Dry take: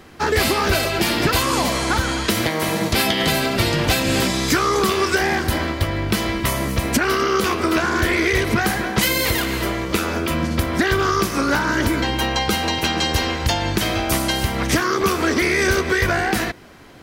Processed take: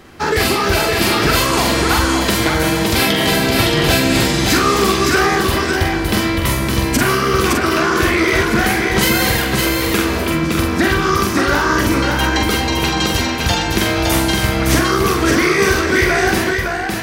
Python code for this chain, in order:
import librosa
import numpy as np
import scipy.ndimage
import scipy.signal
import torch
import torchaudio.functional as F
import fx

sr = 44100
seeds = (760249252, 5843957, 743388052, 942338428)

y = fx.doubler(x, sr, ms=45.0, db=-4.0)
y = y + 10.0 ** (-3.5 / 20.0) * np.pad(y, (int(563 * sr / 1000.0), 0))[:len(y)]
y = F.gain(torch.from_numpy(y), 1.5).numpy()